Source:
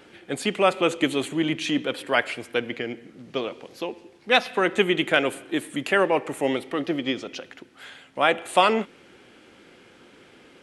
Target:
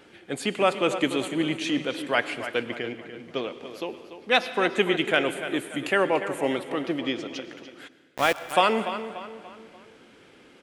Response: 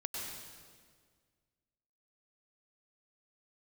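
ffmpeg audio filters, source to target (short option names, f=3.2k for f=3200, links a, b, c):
-filter_complex "[0:a]asplit=2[a][b];[b]adelay=291,lowpass=f=4.7k:p=1,volume=-11dB,asplit=2[c][d];[d]adelay=291,lowpass=f=4.7k:p=1,volume=0.43,asplit=2[e][f];[f]adelay=291,lowpass=f=4.7k:p=1,volume=0.43,asplit=2[g][h];[h]adelay=291,lowpass=f=4.7k:p=1,volume=0.43[i];[a][c][e][g][i]amix=inputs=5:normalize=0,asplit=3[j][k][l];[j]afade=t=out:st=7.87:d=0.02[m];[k]aeval=exprs='val(0)*gte(abs(val(0)),0.0631)':c=same,afade=t=in:st=7.87:d=0.02,afade=t=out:st=8.52:d=0.02[n];[l]afade=t=in:st=8.52:d=0.02[o];[m][n][o]amix=inputs=3:normalize=0,asplit=2[p][q];[1:a]atrim=start_sample=2205[r];[q][r]afir=irnorm=-1:irlink=0,volume=-12.5dB[s];[p][s]amix=inputs=2:normalize=0,volume=-3.5dB"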